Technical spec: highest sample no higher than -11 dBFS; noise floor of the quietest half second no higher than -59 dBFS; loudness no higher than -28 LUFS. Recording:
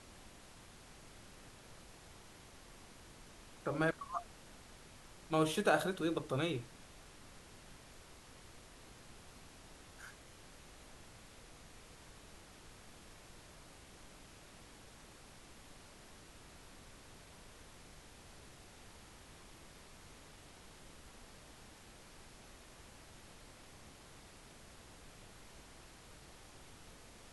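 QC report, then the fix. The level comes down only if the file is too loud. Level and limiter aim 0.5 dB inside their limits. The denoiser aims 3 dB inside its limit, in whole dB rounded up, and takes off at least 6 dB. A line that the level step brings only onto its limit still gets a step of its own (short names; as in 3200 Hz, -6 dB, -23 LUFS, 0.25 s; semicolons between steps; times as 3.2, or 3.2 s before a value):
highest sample -17.5 dBFS: OK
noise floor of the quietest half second -57 dBFS: fail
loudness -37.0 LUFS: OK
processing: denoiser 6 dB, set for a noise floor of -57 dBFS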